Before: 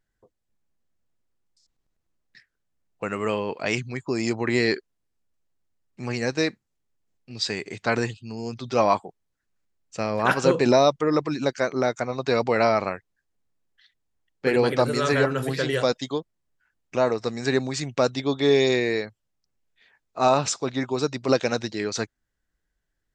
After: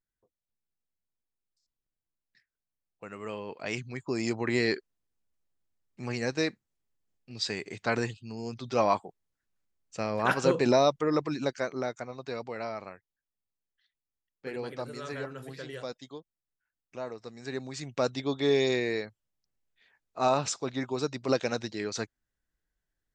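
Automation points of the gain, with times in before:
3.05 s -14.5 dB
4.12 s -5 dB
11.37 s -5 dB
12.54 s -16 dB
17.34 s -16 dB
18.07 s -6 dB

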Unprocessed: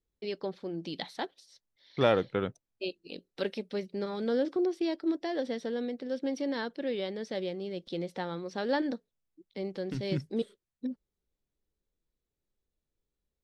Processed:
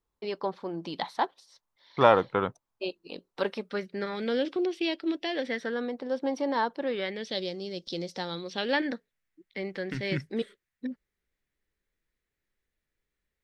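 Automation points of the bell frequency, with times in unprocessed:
bell +15 dB 0.97 oct
3.45 s 1000 Hz
4.43 s 2800 Hz
5.3 s 2800 Hz
5.97 s 940 Hz
6.82 s 940 Hz
7.46 s 5300 Hz
8.18 s 5300 Hz
8.94 s 1900 Hz

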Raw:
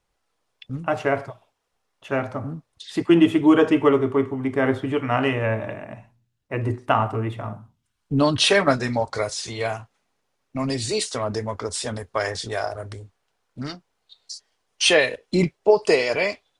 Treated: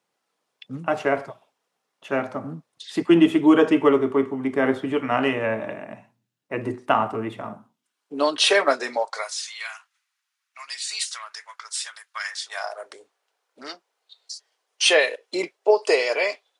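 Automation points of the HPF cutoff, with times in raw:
HPF 24 dB/oct
7.44 s 160 Hz
8.16 s 360 Hz
8.94 s 360 Hz
9.44 s 1300 Hz
12.33 s 1300 Hz
12.99 s 390 Hz

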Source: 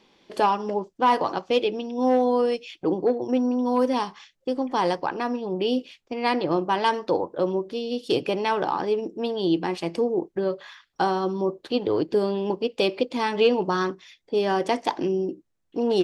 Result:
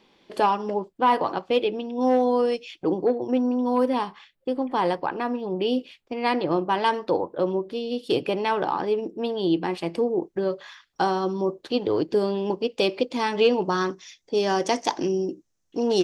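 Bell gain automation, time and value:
bell 6100 Hz 0.67 oct
-3.5 dB
from 0.82 s -10.5 dB
from 2.01 s 0 dB
from 3.06 s -7 dB
from 3.86 s -13.5 dB
from 5.4 s -6 dB
from 10.22 s +3 dB
from 13.9 s +12.5 dB

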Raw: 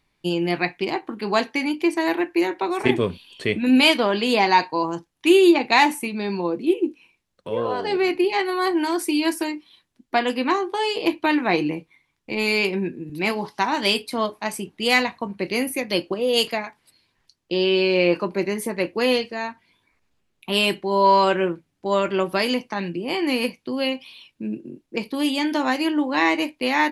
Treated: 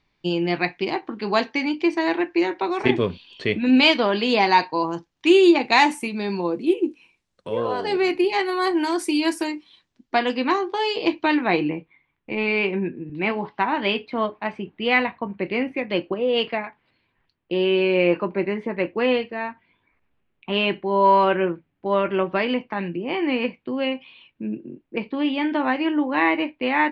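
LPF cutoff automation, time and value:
LPF 24 dB/oct
4.82 s 5800 Hz
6.08 s 9600 Hz
9.43 s 9600 Hz
10.21 s 5900 Hz
11.27 s 5900 Hz
11.77 s 2900 Hz

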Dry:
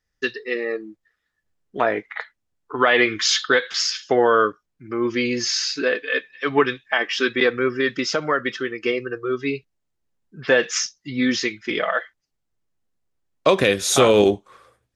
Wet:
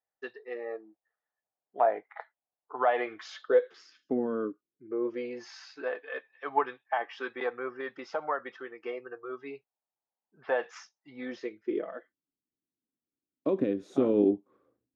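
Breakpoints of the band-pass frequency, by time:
band-pass, Q 3.7
3.22 s 740 Hz
4.25 s 210 Hz
5.46 s 810 Hz
11.19 s 810 Hz
11.94 s 280 Hz

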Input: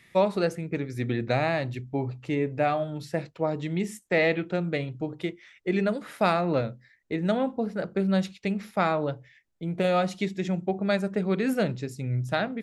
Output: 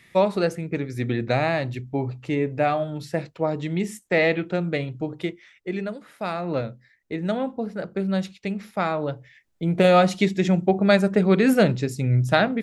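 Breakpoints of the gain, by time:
5.27 s +3 dB
6.15 s -8 dB
6.57 s 0 dB
8.91 s 0 dB
9.69 s +8 dB

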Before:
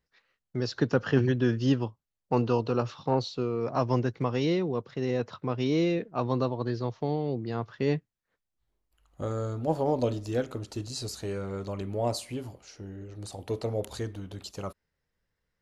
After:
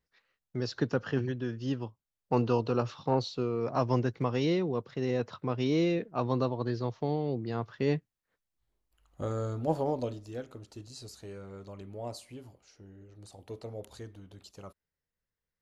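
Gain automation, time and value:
0.77 s -3 dB
1.51 s -10 dB
2.33 s -1.5 dB
9.75 s -1.5 dB
10.25 s -10.5 dB

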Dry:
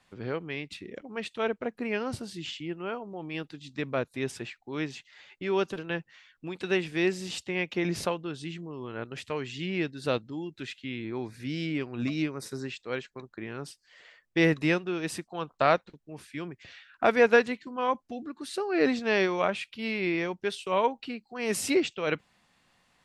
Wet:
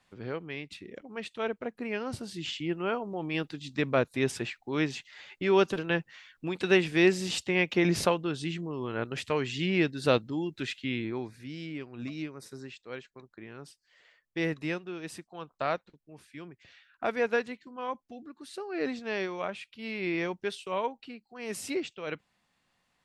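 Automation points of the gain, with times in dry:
2.02 s -3 dB
2.71 s +4 dB
10.97 s +4 dB
11.48 s -7.5 dB
19.74 s -7.5 dB
20.26 s -0.5 dB
20.98 s -7.5 dB

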